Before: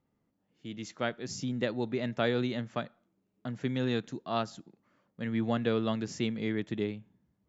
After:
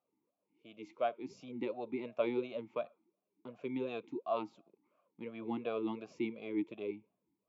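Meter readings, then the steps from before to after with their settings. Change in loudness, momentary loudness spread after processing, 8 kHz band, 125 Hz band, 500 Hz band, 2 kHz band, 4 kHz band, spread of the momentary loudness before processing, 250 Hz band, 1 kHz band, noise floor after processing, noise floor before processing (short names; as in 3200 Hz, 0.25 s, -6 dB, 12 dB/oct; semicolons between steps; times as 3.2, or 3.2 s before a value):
-6.5 dB, 13 LU, n/a, -19.0 dB, -4.0 dB, -11.0 dB, -14.5 dB, 13 LU, -7.5 dB, -4.0 dB, under -85 dBFS, -78 dBFS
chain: vowel sweep a-u 2.8 Hz; gain +6 dB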